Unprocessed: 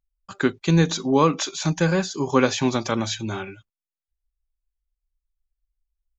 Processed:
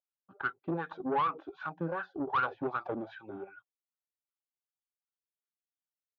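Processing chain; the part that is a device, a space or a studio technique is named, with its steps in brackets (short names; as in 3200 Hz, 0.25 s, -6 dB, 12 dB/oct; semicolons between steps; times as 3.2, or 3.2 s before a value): wah-wah guitar rig (wah 2.6 Hz 260–1400 Hz, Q 4.4; tube stage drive 26 dB, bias 0.45; speaker cabinet 80–3400 Hz, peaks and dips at 140 Hz +4 dB, 230 Hz -7 dB, 780 Hz +5 dB, 1400 Hz +6 dB, 2200 Hz -4 dB)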